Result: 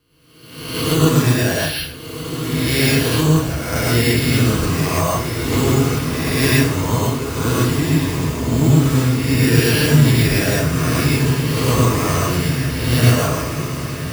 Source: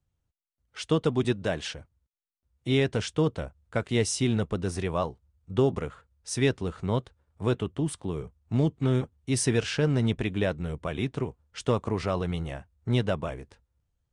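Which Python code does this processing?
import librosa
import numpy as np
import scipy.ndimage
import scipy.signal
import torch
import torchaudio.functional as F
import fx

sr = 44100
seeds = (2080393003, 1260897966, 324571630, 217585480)

p1 = fx.spec_swells(x, sr, rise_s=1.16)
p2 = fx.peak_eq(p1, sr, hz=560.0, db=-9.5, octaves=0.92)
p3 = np.repeat(scipy.signal.resample_poly(p2, 1, 6), 6)[:len(p2)]
p4 = np.sign(p3) * np.maximum(np.abs(p3) - 10.0 ** (-43.5 / 20.0), 0.0)
p5 = p3 + F.gain(torch.from_numpy(p4), -4.0).numpy()
p6 = fx.high_shelf(p5, sr, hz=4500.0, db=5.0)
p7 = fx.notch_comb(p6, sr, f0_hz=190.0)
p8 = fx.echo_diffused(p7, sr, ms=1459, feedback_pct=63, wet_db=-8)
p9 = fx.rev_plate(p8, sr, seeds[0], rt60_s=0.51, hf_ratio=0.9, predelay_ms=90, drr_db=-4.5)
p10 = fx.band_squash(p9, sr, depth_pct=40, at=(5.52, 6.3))
y = F.gain(torch.from_numpy(p10), 2.0).numpy()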